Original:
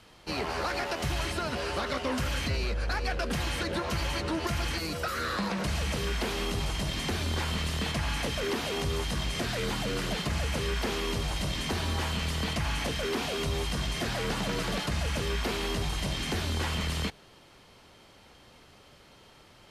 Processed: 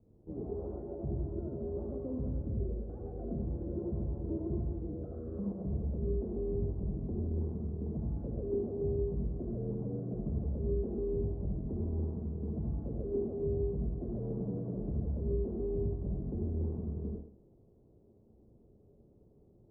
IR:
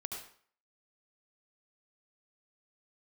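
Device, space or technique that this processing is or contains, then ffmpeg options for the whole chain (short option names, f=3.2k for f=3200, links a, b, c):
next room: -filter_complex "[0:a]lowpass=f=460:w=0.5412,lowpass=f=460:w=1.3066[a];[1:a]atrim=start_sample=2205[b];[a][b]afir=irnorm=-1:irlink=0,volume=-2dB"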